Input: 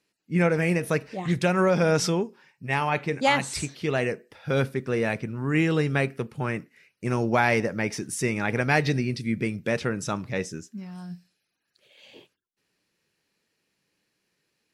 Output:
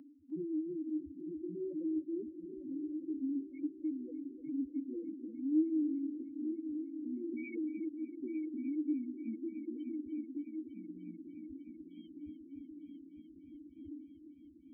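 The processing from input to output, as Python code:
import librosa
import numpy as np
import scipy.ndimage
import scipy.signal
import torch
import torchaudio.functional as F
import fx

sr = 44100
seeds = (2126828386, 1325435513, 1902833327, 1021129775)

p1 = fx.dmg_wind(x, sr, seeds[0], corner_hz=83.0, level_db=-30.0)
p2 = fx.vowel_filter(p1, sr, vowel='i')
p3 = fx.peak_eq(p2, sr, hz=310.0, db=13.5, octaves=0.25)
p4 = fx.notch(p3, sr, hz=540.0, q=18.0)
p5 = fx.rotary_switch(p4, sr, hz=7.0, then_hz=0.7, switch_at_s=6.06)
p6 = fx.graphic_eq(p5, sr, hz=(125, 250, 2000, 8000), db=(-7, -10, -9, -4))
p7 = fx.spec_topn(p6, sr, count=2)
p8 = p7 + fx.echo_heads(p7, sr, ms=301, heads='first and third', feedback_pct=68, wet_db=-14, dry=0)
p9 = fx.band_squash(p8, sr, depth_pct=40)
y = p9 * 10.0 ** (6.0 / 20.0)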